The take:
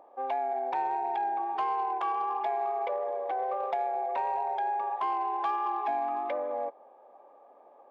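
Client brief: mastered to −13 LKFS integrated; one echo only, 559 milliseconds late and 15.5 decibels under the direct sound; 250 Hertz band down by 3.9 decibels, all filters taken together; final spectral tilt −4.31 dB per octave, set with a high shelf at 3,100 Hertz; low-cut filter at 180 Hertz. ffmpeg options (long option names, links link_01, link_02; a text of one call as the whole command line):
ffmpeg -i in.wav -af "highpass=180,equalizer=frequency=250:width_type=o:gain=-6.5,highshelf=frequency=3100:gain=9,aecho=1:1:559:0.168,volume=18dB" out.wav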